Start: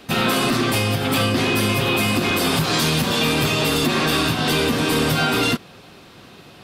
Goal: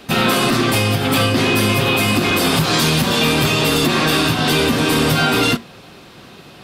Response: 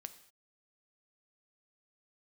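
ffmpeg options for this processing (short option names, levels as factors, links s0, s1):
-af "flanger=delay=5:depth=2.7:regen=-83:speed=0.31:shape=triangular,volume=2.51"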